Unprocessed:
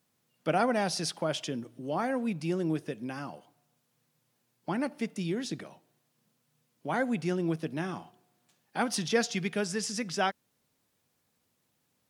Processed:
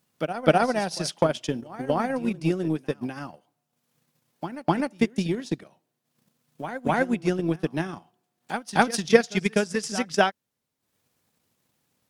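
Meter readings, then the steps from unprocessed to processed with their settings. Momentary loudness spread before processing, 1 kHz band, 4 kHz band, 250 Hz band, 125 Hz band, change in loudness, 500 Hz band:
12 LU, +7.0 dB, +3.5 dB, +6.0 dB, +6.0 dB, +6.0 dB, +8.0 dB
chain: backwards echo 254 ms −11 dB
transient designer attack +11 dB, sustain −10 dB
level +2.5 dB

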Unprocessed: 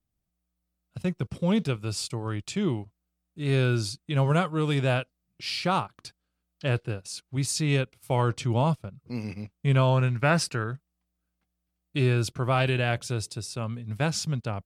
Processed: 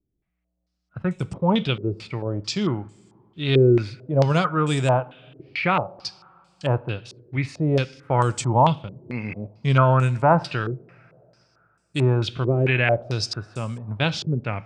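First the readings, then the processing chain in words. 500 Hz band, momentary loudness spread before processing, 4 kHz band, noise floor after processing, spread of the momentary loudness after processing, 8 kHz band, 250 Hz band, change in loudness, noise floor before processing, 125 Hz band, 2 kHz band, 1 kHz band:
+6.5 dB, 11 LU, +3.0 dB, −77 dBFS, 13 LU, −3.5 dB, +4.0 dB, +4.5 dB, −81 dBFS, +3.5 dB, +4.0 dB, +7.5 dB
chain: coupled-rooms reverb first 0.45 s, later 3 s, from −18 dB, DRR 14.5 dB
low-pass on a step sequencer 4.5 Hz 390–7,900 Hz
level +2.5 dB

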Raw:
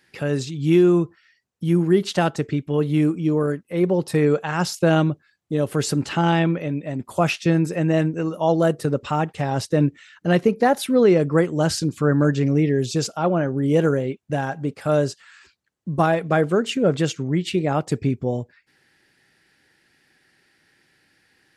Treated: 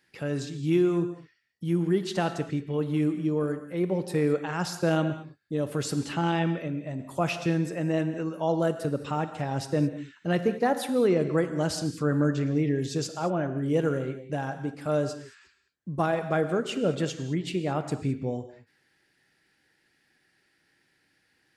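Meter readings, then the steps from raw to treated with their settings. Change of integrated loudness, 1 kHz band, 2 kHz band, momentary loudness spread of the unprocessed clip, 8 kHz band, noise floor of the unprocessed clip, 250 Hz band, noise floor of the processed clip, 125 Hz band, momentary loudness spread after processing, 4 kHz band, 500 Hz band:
−7.0 dB, −7.0 dB, −7.0 dB, 8 LU, −7.0 dB, −64 dBFS, −7.0 dB, −70 dBFS, −7.5 dB, 8 LU, −7.0 dB, −7.0 dB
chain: reverb whose tail is shaped and stops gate 240 ms flat, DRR 9 dB
level −7.5 dB

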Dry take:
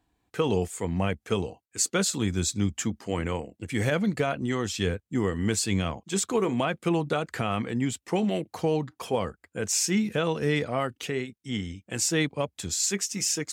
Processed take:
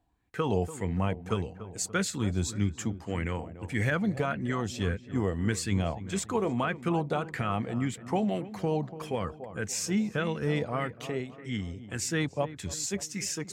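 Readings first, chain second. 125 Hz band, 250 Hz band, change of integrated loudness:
−0.5 dB, −3.0 dB, −3.5 dB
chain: low-shelf EQ 220 Hz +9 dB
on a send: feedback echo with a low-pass in the loop 289 ms, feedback 49%, low-pass 1,600 Hz, level −13.5 dB
on the sum: auto-filter bell 1.7 Hz 630–2,100 Hz +10 dB
level −7.5 dB

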